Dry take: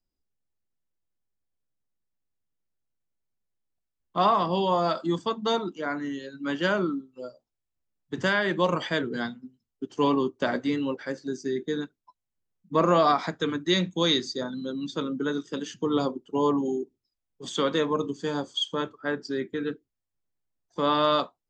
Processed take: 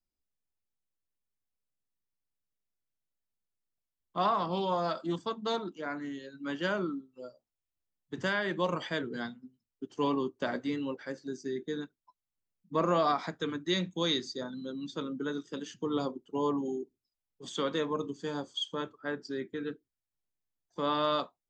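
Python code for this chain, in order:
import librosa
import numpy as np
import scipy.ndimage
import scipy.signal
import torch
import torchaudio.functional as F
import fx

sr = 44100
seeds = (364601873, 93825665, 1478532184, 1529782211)

y = fx.doppler_dist(x, sr, depth_ms=0.12, at=(4.25, 6.25))
y = y * librosa.db_to_amplitude(-6.5)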